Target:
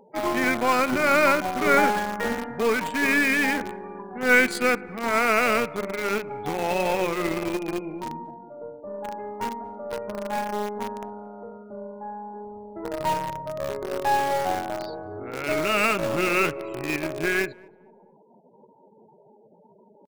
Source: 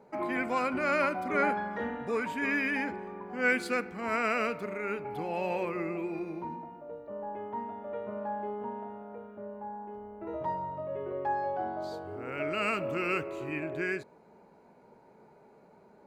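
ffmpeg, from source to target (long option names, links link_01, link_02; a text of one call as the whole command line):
ffmpeg -i in.wav -filter_complex "[0:a]afftfilt=real='re*gte(hypot(re,im),0.00355)':imag='im*gte(hypot(re,im),0.00355)':win_size=1024:overlap=0.75,highshelf=frequency=5200:gain=6.5,aeval=exprs='0.224*(cos(1*acos(clip(val(0)/0.224,-1,1)))-cos(1*PI/2))+0.00631*(cos(4*acos(clip(val(0)/0.224,-1,1)))-cos(4*PI/2))+0.00501*(cos(8*acos(clip(val(0)/0.224,-1,1)))-cos(8*PI/2))':channel_layout=same,asplit=2[link_01][link_02];[link_02]acrusher=bits=4:mix=0:aa=0.000001,volume=-6dB[link_03];[link_01][link_03]amix=inputs=2:normalize=0,atempo=0.8,asplit=2[link_04][link_05];[link_05]adelay=226,lowpass=frequency=1000:poles=1,volume=-23dB,asplit=2[link_06][link_07];[link_07]adelay=226,lowpass=frequency=1000:poles=1,volume=0.41,asplit=2[link_08][link_09];[link_09]adelay=226,lowpass=frequency=1000:poles=1,volume=0.41[link_10];[link_06][link_08][link_10]amix=inputs=3:normalize=0[link_11];[link_04][link_11]amix=inputs=2:normalize=0,volume=4.5dB" out.wav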